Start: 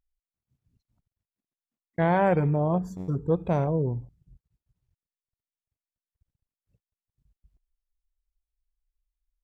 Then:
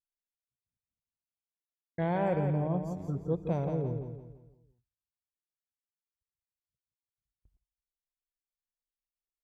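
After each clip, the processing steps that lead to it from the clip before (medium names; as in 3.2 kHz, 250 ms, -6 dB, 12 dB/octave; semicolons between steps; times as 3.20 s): dynamic bell 1.3 kHz, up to -6 dB, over -40 dBFS, Q 1.1; on a send: feedback delay 170 ms, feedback 39%, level -6.5 dB; on the sum: gate with hold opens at -52 dBFS; trim -6.5 dB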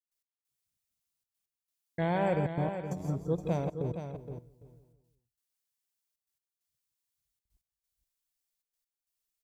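treble shelf 2.9 kHz +11.5 dB; trance gate ".x..xxxxxxx" 134 bpm -24 dB; on a send: delay 469 ms -9 dB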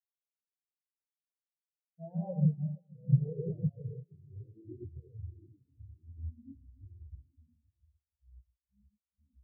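ever faster or slower copies 296 ms, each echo -5 st, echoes 3; gated-style reverb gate 150 ms rising, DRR -0.5 dB; spectral contrast expander 4:1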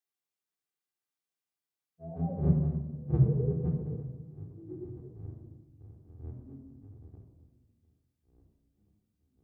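octave divider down 1 oct, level -2 dB; high-pass 150 Hz 12 dB/octave; simulated room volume 3300 m³, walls furnished, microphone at 3.7 m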